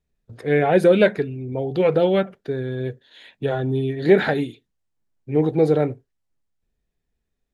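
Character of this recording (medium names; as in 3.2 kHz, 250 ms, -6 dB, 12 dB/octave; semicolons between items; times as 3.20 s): noise floor -77 dBFS; spectral tilt -5.0 dB/octave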